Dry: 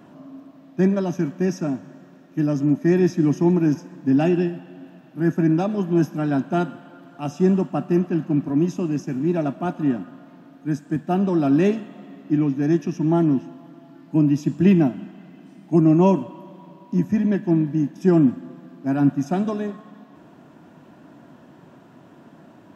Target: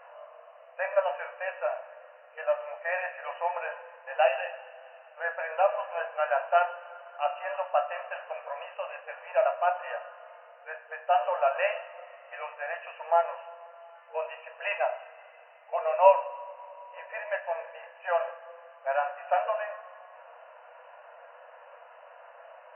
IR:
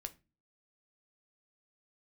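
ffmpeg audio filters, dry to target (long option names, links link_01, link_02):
-filter_complex "[1:a]atrim=start_sample=2205,asetrate=26460,aresample=44100[link_01];[0:a][link_01]afir=irnorm=-1:irlink=0,afftfilt=real='re*between(b*sr/4096,470,3000)':imag='im*between(b*sr/4096,470,3000)':win_size=4096:overlap=0.75,volume=4.5dB"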